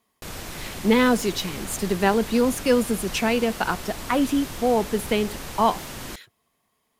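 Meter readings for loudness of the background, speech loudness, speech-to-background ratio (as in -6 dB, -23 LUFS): -35.0 LUFS, -23.0 LUFS, 12.0 dB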